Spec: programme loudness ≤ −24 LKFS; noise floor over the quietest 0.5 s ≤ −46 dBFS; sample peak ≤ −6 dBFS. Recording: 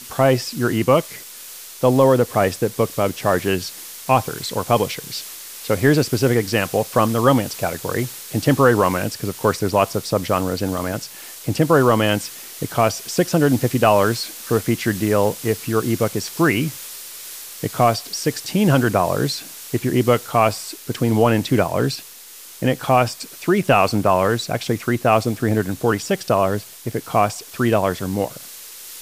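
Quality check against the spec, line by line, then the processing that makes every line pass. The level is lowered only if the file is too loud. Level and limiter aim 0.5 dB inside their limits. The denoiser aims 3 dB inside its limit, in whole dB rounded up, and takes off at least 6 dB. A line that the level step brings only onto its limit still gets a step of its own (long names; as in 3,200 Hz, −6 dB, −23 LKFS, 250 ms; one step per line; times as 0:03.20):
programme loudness −19.5 LKFS: out of spec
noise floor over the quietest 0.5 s −40 dBFS: out of spec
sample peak −3.0 dBFS: out of spec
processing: broadband denoise 6 dB, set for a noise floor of −40 dBFS
level −5 dB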